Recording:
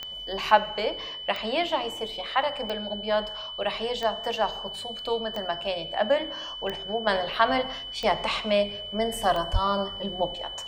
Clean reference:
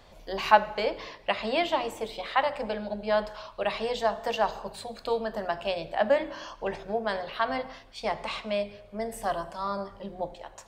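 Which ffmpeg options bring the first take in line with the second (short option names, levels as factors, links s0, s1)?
-filter_complex "[0:a]adeclick=t=4,bandreject=f=3000:w=30,asplit=3[s0][s1][s2];[s0]afade=t=out:st=9.52:d=0.02[s3];[s1]highpass=f=140:w=0.5412,highpass=f=140:w=1.3066,afade=t=in:st=9.52:d=0.02,afade=t=out:st=9.64:d=0.02[s4];[s2]afade=t=in:st=9.64:d=0.02[s5];[s3][s4][s5]amix=inputs=3:normalize=0,asetnsamples=n=441:p=0,asendcmd='7.07 volume volume -6dB',volume=1"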